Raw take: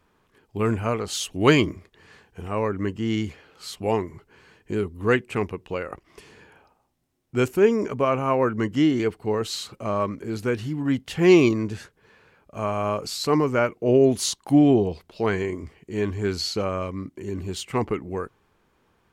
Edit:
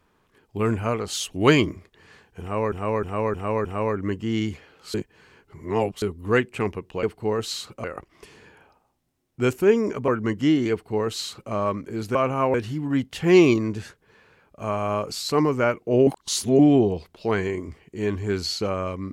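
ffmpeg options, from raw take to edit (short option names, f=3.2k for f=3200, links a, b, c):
-filter_complex "[0:a]asplit=14[a][b][c][d][e][f][g][h][i][j][k][l][m][n];[a]atrim=end=2.722[o];[b]atrim=start=2.408:end=2.722[p];[c]atrim=start=2.408:end=2.722[q];[d]atrim=start=2.408:end=2.722[r];[e]atrim=start=2.408:end=3.702[s];[f]atrim=start=3.698:end=4.782,asetpts=PTS-STARTPTS,areverse[t];[g]atrim=start=4.778:end=5.792[u];[h]atrim=start=9.048:end=9.862[v];[i]atrim=start=5.788:end=8.032[w];[j]atrim=start=8.418:end=10.492[x];[k]atrim=start=8.028:end=8.422[y];[l]atrim=start=10.488:end=14.022[z];[m]atrim=start=14.018:end=14.542,asetpts=PTS-STARTPTS,areverse[aa];[n]atrim=start=14.538[ab];[o][p]acrossfade=d=0.004:c1=hsin:c2=hsin[ac];[ac][q]acrossfade=d=0.004:c1=hsin:c2=hsin[ad];[ad][r]acrossfade=d=0.004:c1=hsin:c2=hsin[ae];[ae][s]acrossfade=d=0.004:c1=hsin:c2=hsin[af];[af][t]acrossfade=d=0.004:c1=hsin:c2=hsin[ag];[ag][u]acrossfade=d=0.004:c1=hsin:c2=hsin[ah];[ah][v]acrossfade=d=0.004:c1=hsin:c2=hsin[ai];[ai][w]acrossfade=d=0.004:c1=hsin:c2=hsin[aj];[aj][x]acrossfade=d=0.004:c1=hsin:c2=hsin[ak];[ak][y]acrossfade=d=0.004:c1=hsin:c2=hsin[al];[al][z]acrossfade=d=0.004:c1=hsin:c2=hsin[am];[am][aa]acrossfade=d=0.004:c1=hsin:c2=hsin[an];[an][ab]acrossfade=d=0.004:c1=hsin:c2=hsin"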